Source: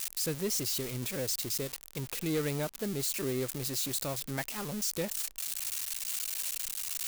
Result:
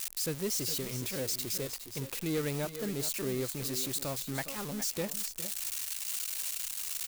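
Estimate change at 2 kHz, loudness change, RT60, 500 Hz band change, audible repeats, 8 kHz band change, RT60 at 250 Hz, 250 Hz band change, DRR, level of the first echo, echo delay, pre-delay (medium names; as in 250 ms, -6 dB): -0.5 dB, -0.5 dB, no reverb, -0.5 dB, 1, -0.5 dB, no reverb, -0.5 dB, no reverb, -12.5 dB, 411 ms, no reverb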